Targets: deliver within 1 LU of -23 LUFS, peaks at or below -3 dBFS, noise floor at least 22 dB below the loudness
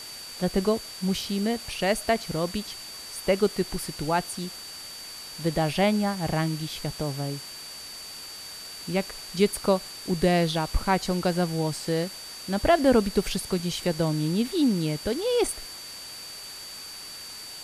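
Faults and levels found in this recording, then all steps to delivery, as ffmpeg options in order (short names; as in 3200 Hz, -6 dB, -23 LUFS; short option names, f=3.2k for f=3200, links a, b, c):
steady tone 4600 Hz; tone level -40 dBFS; noise floor -41 dBFS; noise floor target -50 dBFS; loudness -27.5 LUFS; peak -8.0 dBFS; loudness target -23.0 LUFS
-> -af "bandreject=f=4.6k:w=30"
-af "afftdn=nr=9:nf=-41"
-af "volume=4.5dB"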